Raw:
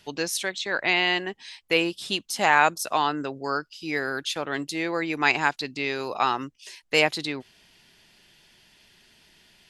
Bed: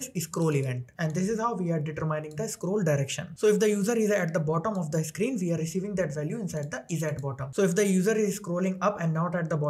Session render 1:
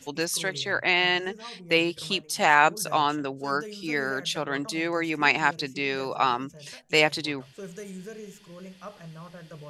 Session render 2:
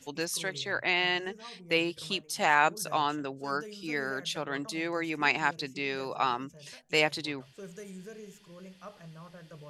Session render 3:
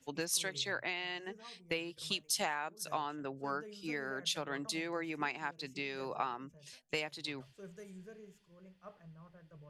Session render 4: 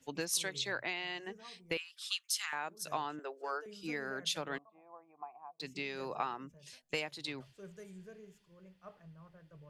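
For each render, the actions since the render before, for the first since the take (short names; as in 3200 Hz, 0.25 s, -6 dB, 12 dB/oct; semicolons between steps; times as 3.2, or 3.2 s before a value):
add bed -16 dB
gain -5 dB
compressor 16:1, threshold -34 dBFS, peak gain reduction 17 dB; three-band expander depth 100%
1.77–2.53 elliptic high-pass 1200 Hz, stop band 70 dB; 3.19–3.66 steep high-pass 350 Hz 48 dB/oct; 4.58–5.6 vocal tract filter a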